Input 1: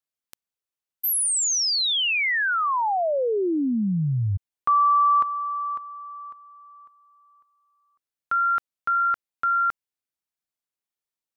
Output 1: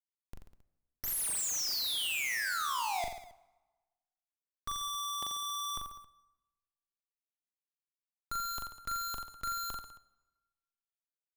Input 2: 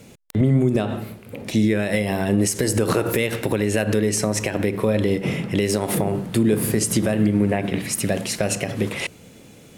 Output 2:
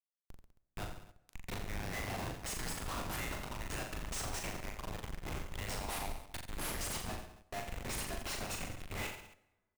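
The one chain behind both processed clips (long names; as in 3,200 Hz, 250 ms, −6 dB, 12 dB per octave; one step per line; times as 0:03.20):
Butterworth high-pass 720 Hz 72 dB per octave
parametric band 1,600 Hz −4.5 dB 0.45 octaves
comparator with hysteresis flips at −28 dBFS
on a send: reverse bouncing-ball delay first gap 40 ms, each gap 1.15×, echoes 5
on the sum: dense smooth reverb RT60 1.2 s, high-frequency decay 0.75×, DRR 17 dB
level −8.5 dB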